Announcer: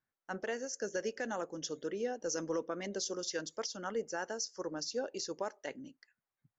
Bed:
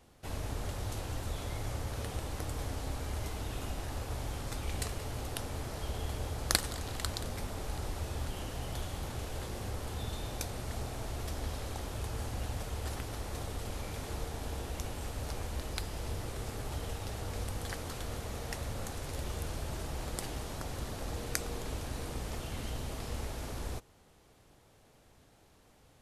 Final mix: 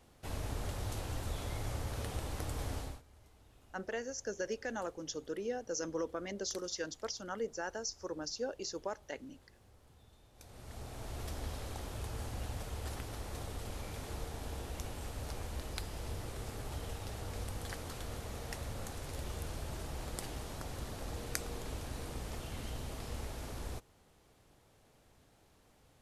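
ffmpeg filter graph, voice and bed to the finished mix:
-filter_complex "[0:a]adelay=3450,volume=-1.5dB[a];[1:a]volume=19.5dB,afade=t=out:st=2.77:d=0.25:silence=0.0707946,afade=t=in:st=10.34:d=0.88:silence=0.0891251[b];[a][b]amix=inputs=2:normalize=0"

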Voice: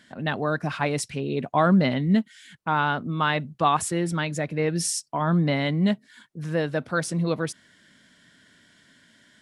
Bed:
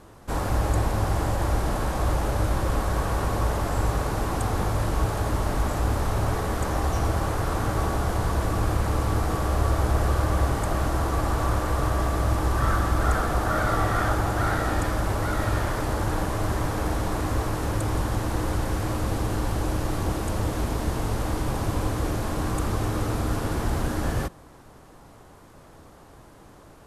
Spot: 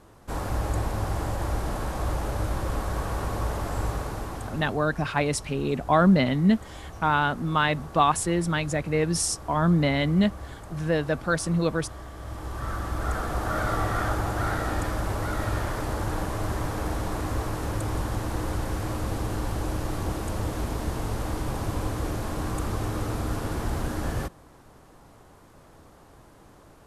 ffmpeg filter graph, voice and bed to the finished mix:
-filter_complex "[0:a]adelay=4350,volume=0.5dB[a];[1:a]volume=9.5dB,afade=t=out:st=3.85:d=0.96:silence=0.237137,afade=t=in:st=12.15:d=1.47:silence=0.211349[b];[a][b]amix=inputs=2:normalize=0"

